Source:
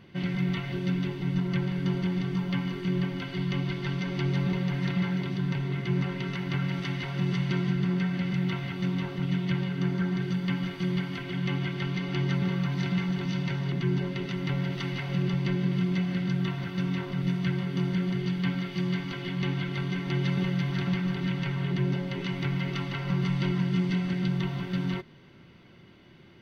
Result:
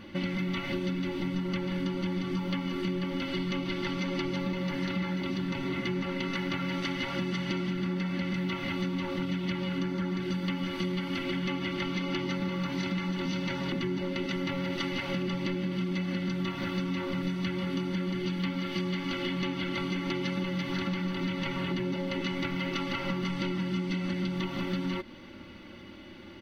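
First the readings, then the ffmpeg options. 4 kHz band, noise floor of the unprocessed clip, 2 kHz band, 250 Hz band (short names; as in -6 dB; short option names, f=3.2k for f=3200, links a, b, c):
+2.0 dB, -52 dBFS, +0.5 dB, -2.0 dB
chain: -af "aecho=1:1:3.5:0.86,acompressor=threshold=-34dB:ratio=6,volume=5.5dB"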